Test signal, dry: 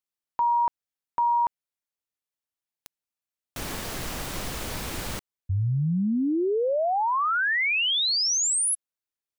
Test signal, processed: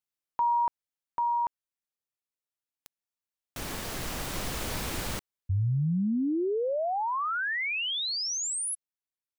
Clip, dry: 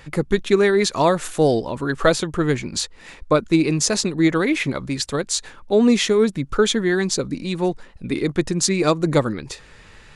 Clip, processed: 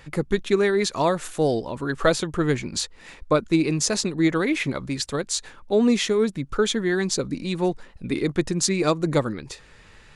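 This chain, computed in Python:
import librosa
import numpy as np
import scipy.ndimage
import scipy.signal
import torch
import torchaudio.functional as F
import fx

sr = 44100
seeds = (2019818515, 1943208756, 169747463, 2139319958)

y = fx.rider(x, sr, range_db=4, speed_s=2.0)
y = F.gain(torch.from_numpy(y), -4.0).numpy()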